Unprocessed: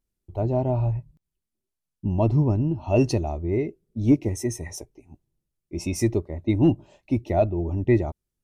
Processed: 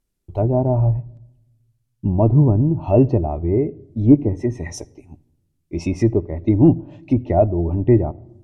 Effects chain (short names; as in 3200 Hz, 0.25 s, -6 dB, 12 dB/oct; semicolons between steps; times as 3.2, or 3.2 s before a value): treble ducked by the level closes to 980 Hz, closed at -20.5 dBFS; shoebox room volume 3100 m³, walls furnished, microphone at 0.34 m; gain +6 dB